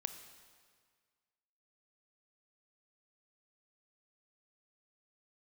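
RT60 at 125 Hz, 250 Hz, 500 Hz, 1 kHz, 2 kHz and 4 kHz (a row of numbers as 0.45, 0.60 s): 1.8, 1.8, 1.8, 1.8, 1.7, 1.6 s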